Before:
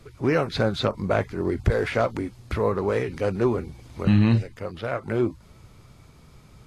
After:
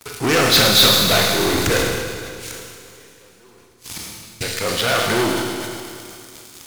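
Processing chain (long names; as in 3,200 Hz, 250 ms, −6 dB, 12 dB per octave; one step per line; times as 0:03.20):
high-shelf EQ 2,600 Hz +11 dB
leveller curve on the samples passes 5
notch filter 580 Hz, Q 14
delay with a high-pass on its return 105 ms, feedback 71%, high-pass 4,000 Hz, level −5 dB
0:01.77–0:04.41: gate with flip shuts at −13 dBFS, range −33 dB
spectral tilt +2 dB per octave
four-comb reverb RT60 2.5 s, combs from 26 ms, DRR 1 dB
level that may fall only so fast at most 33 dB per second
level −6.5 dB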